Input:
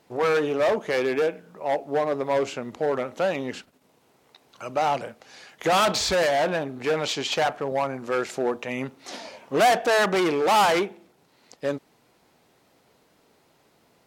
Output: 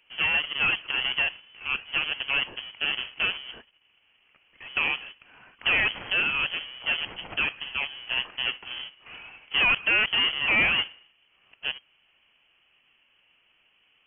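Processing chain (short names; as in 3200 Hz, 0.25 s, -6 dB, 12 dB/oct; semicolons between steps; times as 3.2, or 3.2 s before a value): half-waves squared off; added harmonics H 7 -11 dB, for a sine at -10.5 dBFS; inverted band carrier 3200 Hz; gain -7.5 dB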